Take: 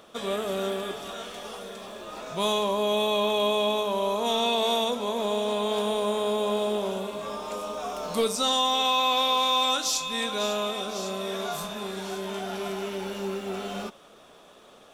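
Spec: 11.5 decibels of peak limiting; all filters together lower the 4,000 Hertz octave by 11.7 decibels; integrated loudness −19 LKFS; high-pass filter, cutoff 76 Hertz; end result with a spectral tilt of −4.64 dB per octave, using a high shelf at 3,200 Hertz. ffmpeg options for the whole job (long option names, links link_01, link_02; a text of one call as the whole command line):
ffmpeg -i in.wav -af "highpass=76,highshelf=frequency=3200:gain=-9,equalizer=frequency=4000:width_type=o:gain=-8,volume=17dB,alimiter=limit=-9.5dB:level=0:latency=1" out.wav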